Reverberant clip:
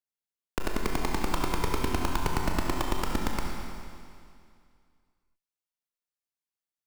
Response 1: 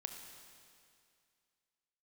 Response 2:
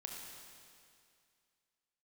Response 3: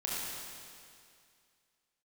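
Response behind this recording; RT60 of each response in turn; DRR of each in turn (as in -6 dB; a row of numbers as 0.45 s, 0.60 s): 2; 2.3 s, 2.3 s, 2.3 s; 4.5 dB, -0.5 dB, -6.5 dB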